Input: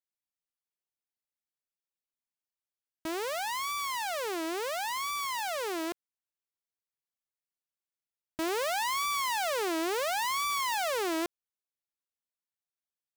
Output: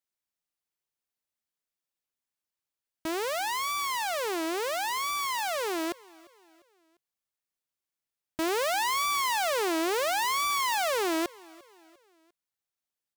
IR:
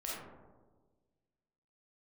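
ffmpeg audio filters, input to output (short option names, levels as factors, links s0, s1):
-af "aecho=1:1:349|698|1047:0.0668|0.0307|0.0141,volume=1.41"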